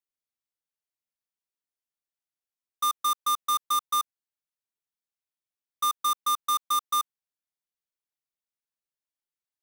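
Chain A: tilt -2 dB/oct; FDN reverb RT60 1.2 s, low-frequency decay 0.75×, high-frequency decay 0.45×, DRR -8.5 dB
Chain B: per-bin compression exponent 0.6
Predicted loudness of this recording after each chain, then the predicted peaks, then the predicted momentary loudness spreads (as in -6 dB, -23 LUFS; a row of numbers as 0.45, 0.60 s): -22.0, -26.5 LUFS; -11.5, -20.0 dBFS; 10, 4 LU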